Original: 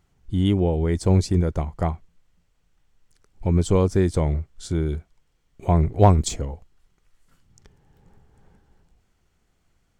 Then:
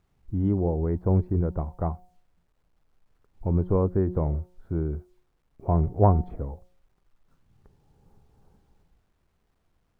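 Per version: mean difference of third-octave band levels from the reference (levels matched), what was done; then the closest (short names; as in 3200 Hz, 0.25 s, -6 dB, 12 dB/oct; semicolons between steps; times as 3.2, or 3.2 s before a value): 4.5 dB: LPF 1300 Hz 24 dB/oct; de-hum 180.7 Hz, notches 5; bit-crush 12-bit; gain -4 dB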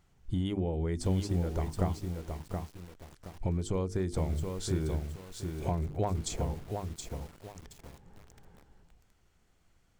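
6.5 dB: notches 50/100/150/200/250/300/350/400/450 Hz; compressor 8:1, threshold -27 dBFS, peak gain reduction 16 dB; lo-fi delay 0.722 s, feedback 35%, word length 8-bit, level -5 dB; gain -1 dB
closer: first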